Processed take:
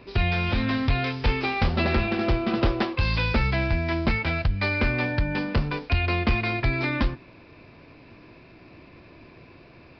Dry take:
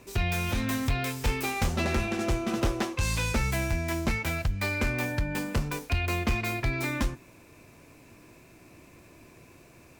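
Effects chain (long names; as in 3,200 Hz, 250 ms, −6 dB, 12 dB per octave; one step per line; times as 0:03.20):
downsampling to 11,025 Hz
level +4.5 dB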